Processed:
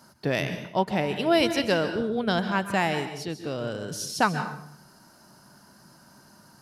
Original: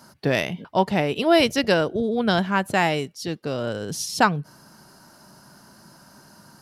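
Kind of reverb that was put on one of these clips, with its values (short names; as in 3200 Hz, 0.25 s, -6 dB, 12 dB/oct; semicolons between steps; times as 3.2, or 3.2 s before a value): plate-style reverb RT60 0.66 s, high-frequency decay 0.8×, pre-delay 0.12 s, DRR 8.5 dB; gain -4.5 dB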